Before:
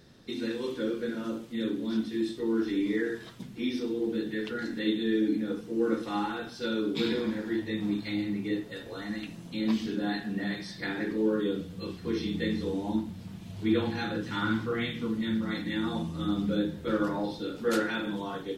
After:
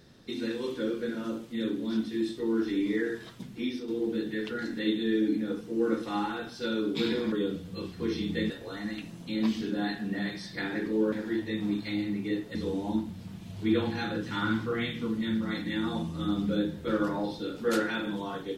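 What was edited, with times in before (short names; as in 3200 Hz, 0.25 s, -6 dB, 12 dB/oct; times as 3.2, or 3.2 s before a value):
3.6–3.88 fade out, to -7.5 dB
7.32–8.75 swap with 11.37–12.55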